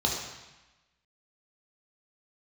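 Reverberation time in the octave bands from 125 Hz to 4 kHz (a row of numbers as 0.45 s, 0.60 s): 1.1 s, 1.1 s, 0.95 s, 1.1 s, 1.2 s, 1.1 s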